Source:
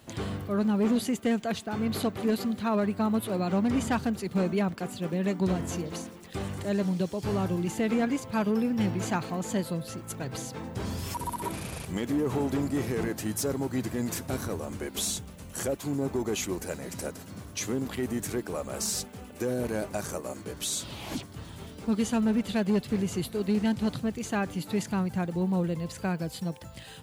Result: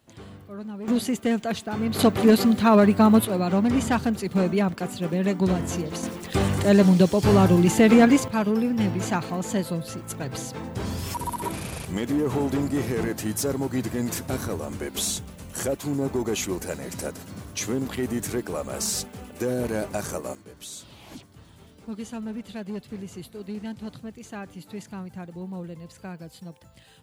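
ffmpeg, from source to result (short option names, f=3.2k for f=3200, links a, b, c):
-af "asetnsamples=n=441:p=0,asendcmd='0.88 volume volume 3dB;1.99 volume volume 10.5dB;3.25 volume volume 4.5dB;6.03 volume volume 11.5dB;8.28 volume volume 3.5dB;20.35 volume volume -8dB',volume=-10dB"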